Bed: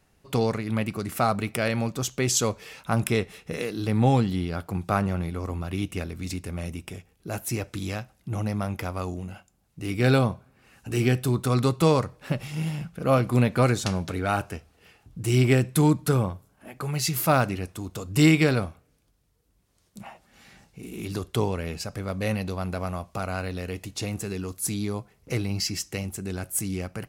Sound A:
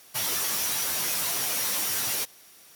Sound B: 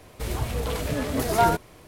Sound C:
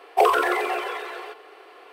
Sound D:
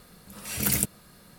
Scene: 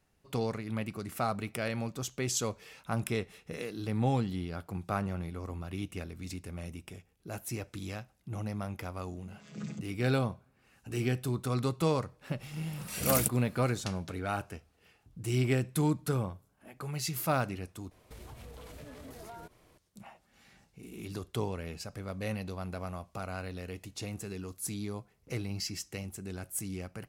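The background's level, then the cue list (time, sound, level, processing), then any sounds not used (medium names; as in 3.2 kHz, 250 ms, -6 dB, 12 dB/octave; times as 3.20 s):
bed -8.5 dB
8.94 s: add D -9.5 dB + vocoder on a held chord minor triad, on C#3
12.43 s: add D -4.5 dB
17.91 s: replace with B -13 dB + compression, threshold -31 dBFS
not used: A, C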